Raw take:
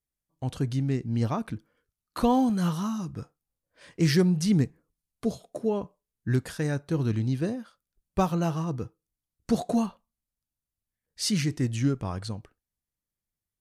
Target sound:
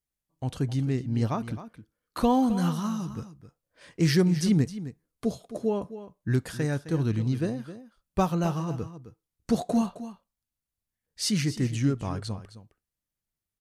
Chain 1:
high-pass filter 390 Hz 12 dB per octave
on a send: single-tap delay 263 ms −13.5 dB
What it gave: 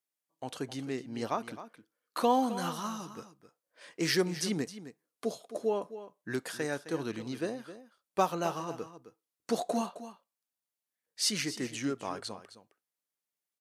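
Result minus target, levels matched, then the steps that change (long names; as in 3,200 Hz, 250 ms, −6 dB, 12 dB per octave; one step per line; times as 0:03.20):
500 Hz band +4.0 dB
remove: high-pass filter 390 Hz 12 dB per octave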